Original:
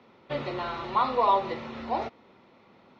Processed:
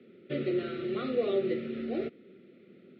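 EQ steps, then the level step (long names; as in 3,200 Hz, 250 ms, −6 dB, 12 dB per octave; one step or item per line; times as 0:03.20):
Butterworth band-reject 940 Hz, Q 0.64
loudspeaker in its box 170–3,700 Hz, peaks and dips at 180 Hz +4 dB, 380 Hz +7 dB, 840 Hz +3 dB, 1,300 Hz +7 dB
tilt shelving filter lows +4 dB
0.0 dB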